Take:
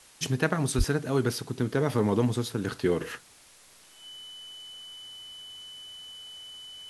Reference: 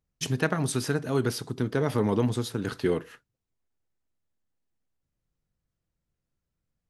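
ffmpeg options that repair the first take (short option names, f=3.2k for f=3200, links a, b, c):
-filter_complex "[0:a]bandreject=f=3k:w=30,asplit=3[a][b][c];[a]afade=t=out:st=0.77:d=0.02[d];[b]highpass=f=140:w=0.5412,highpass=f=140:w=1.3066,afade=t=in:st=0.77:d=0.02,afade=t=out:st=0.89:d=0.02[e];[c]afade=t=in:st=0.89:d=0.02[f];[d][e][f]amix=inputs=3:normalize=0,afwtdn=0.0022,asetnsamples=n=441:p=0,asendcmd='3.01 volume volume -11dB',volume=0dB"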